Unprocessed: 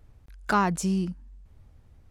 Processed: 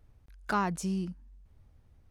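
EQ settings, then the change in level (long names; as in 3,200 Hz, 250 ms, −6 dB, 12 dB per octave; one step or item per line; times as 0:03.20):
notch filter 7,400 Hz, Q 17
−6.0 dB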